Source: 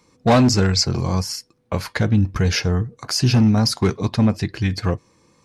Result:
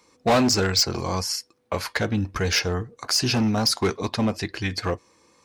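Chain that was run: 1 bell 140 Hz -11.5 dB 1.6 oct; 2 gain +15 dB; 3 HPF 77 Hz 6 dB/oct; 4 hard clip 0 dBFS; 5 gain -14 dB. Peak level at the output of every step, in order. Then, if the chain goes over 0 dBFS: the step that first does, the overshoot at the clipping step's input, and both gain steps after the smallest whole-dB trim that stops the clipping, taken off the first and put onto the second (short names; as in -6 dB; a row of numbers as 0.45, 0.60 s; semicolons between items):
-6.5, +8.5, +9.0, 0.0, -14.0 dBFS; step 2, 9.0 dB; step 2 +6 dB, step 5 -5 dB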